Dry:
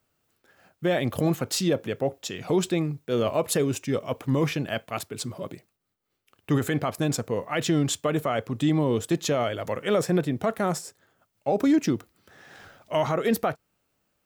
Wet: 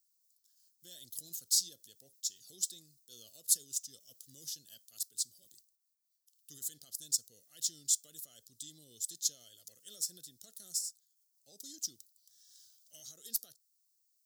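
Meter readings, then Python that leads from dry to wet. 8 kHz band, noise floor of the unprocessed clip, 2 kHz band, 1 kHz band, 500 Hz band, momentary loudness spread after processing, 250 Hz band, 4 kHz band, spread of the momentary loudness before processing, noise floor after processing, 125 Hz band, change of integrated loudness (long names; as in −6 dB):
+2.0 dB, −76 dBFS, below −35 dB, below −40 dB, below −40 dB, 22 LU, −39.0 dB, −6.0 dB, 8 LU, −77 dBFS, −38.0 dB, −9.5 dB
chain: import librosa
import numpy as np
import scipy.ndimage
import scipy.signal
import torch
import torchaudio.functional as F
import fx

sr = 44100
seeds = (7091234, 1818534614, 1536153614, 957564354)

y = scipy.signal.sosfilt(scipy.signal.cheby2(4, 40, 2500.0, 'highpass', fs=sr, output='sos'), x)
y = y * librosa.db_to_amplitude(2.0)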